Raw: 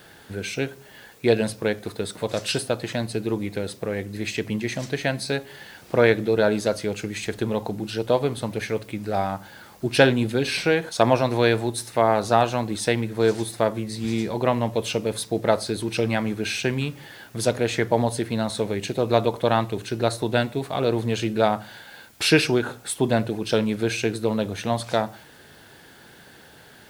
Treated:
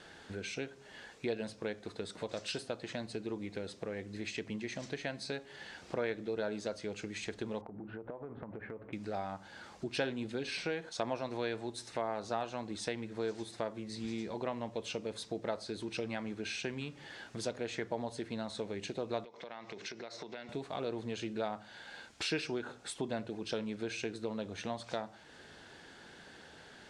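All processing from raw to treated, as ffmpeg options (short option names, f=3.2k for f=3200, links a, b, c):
-filter_complex "[0:a]asettb=1/sr,asplit=3[a][b][c];[a]atrim=end=7.614[d];[b]atrim=start=7.61:end=8.93,asetpts=PTS-STARTPTS,afade=t=in:d=0.004:c=qsin,afade=t=out:st=1.316:d=0.004:c=qsin,lowpass=f=1.6k:w=0.5412,lowpass=f=1.6k:w=1.3066,acompressor=threshold=-31dB:ratio=12:attack=3.2:release=140:knee=1:detection=peak[e];[c]atrim=start=8.926[f];[d][e]acrossfade=d=0.004:c1=hsin:c2=qsin[g];[g][f]acrossfade=d=0.004:c1=qsin:c2=hsin,asettb=1/sr,asplit=3[h][i][j];[h]atrim=end=19.244[k];[i]atrim=start=19.24:end=20.49,asetpts=PTS-STARTPTS,afade=t=in:d=0.004:c=qsin,afade=t=out:st=1.246:d=0.004:c=qsin,acompressor=threshold=-31dB:ratio=20:attack=3.2:release=140:knee=1:detection=peak,highpass=210,equalizer=f=290:t=q:w=4:g=-6,equalizer=f=2.1k:t=q:w=4:g=9,equalizer=f=5.4k:t=q:w=4:g=7,lowpass=f=6.8k:w=0.5412,lowpass=f=6.8k:w=1.3066[l];[j]atrim=start=20.486[m];[k][l]acrossfade=d=0.004:c1=hsin:c2=qsin[n];[n][m]acrossfade=d=0.004:c1=qsin:c2=hsin,lowpass=f=7.8k:w=0.5412,lowpass=f=7.8k:w=1.3066,equalizer=f=120:w=2.3:g=-6.5,acompressor=threshold=-37dB:ratio=2,volume=-5dB"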